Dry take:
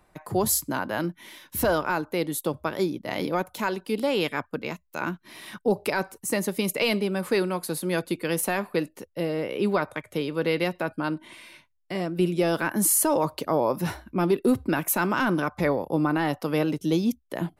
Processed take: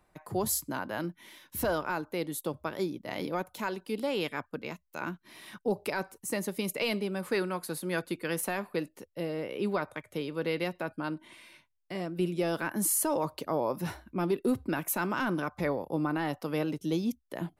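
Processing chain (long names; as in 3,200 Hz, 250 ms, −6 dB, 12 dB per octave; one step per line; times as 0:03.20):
0:07.22–0:08.49: dynamic equaliser 1,500 Hz, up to +5 dB, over −42 dBFS, Q 1.4
level −6.5 dB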